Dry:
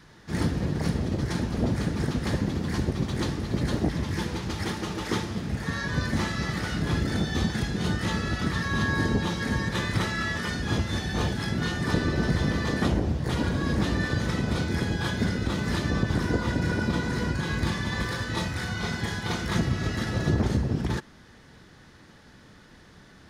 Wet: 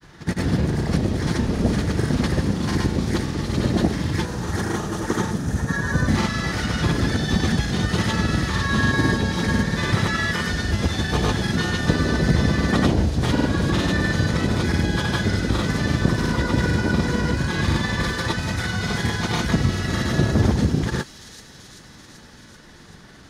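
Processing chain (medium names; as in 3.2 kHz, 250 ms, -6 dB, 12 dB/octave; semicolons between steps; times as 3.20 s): time-frequency box 4.28–6.09 s, 1.9–5.6 kHz -8 dB; granulator, pitch spread up and down by 0 st; feedback echo behind a high-pass 386 ms, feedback 70%, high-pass 5 kHz, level -5 dB; trim +7 dB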